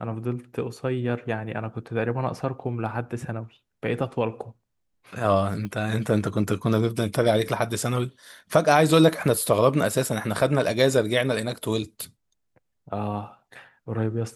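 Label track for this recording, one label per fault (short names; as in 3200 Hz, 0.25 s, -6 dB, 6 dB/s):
5.650000	5.650000	pop -21 dBFS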